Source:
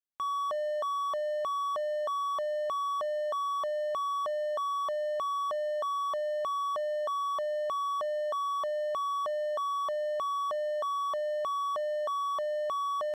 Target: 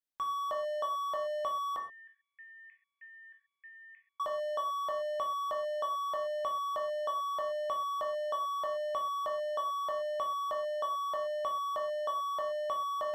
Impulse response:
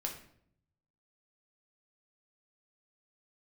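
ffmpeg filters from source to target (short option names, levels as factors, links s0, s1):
-filter_complex "[0:a]asettb=1/sr,asplit=3[s0][s1][s2];[s0]atrim=end=1.764[s3];[s1]atrim=start=1.76:end=4.2,asetpts=PTS-STARTPTS,afade=t=in:d=0.004:c=qsin,afade=t=out:st=2.436:d=0.004:c=qsin,asuperpass=centerf=2100:order=12:qfactor=2.3[s4];[s2]atrim=start=4.196[s5];[s3][s4]acrossfade=d=0.004:c1=hsin:c2=qsin[s6];[s6][s5]acrossfade=d=0.004:c1=qsin:c2=hsin[s7];[1:a]atrim=start_sample=2205,atrim=end_sample=6174[s8];[s7][s8]afir=irnorm=-1:irlink=0"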